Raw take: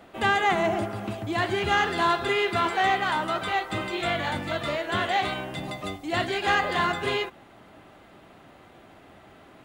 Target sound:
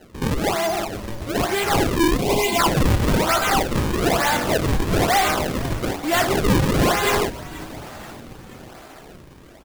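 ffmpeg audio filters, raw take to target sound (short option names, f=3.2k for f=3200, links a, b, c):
-filter_complex "[0:a]dynaudnorm=f=500:g=7:m=11.5dB,asplit=2[a][b];[b]highpass=f=720:p=1,volume=21dB,asoftclip=type=tanh:threshold=-1.5dB[c];[a][c]amix=inputs=2:normalize=0,lowpass=f=2.5k:p=1,volume=-6dB,acrusher=samples=37:mix=1:aa=0.000001:lfo=1:lforange=59.2:lforate=1.1,asplit=3[d][e][f];[d]afade=t=out:st=2.16:d=0.02[g];[e]asuperstop=centerf=1500:order=20:qfactor=1.6,afade=t=in:st=2.16:d=0.02,afade=t=out:st=2.58:d=0.02[h];[f]afade=t=in:st=2.58:d=0.02[i];[g][h][i]amix=inputs=3:normalize=0,asplit=2[j][k];[k]asplit=5[l][m][n][o][p];[l]adelay=481,afreqshift=-94,volume=-18dB[q];[m]adelay=962,afreqshift=-188,volume=-22.6dB[r];[n]adelay=1443,afreqshift=-282,volume=-27.2dB[s];[o]adelay=1924,afreqshift=-376,volume=-31.7dB[t];[p]adelay=2405,afreqshift=-470,volume=-36.3dB[u];[q][r][s][t][u]amix=inputs=5:normalize=0[v];[j][v]amix=inputs=2:normalize=0,volume=-8dB"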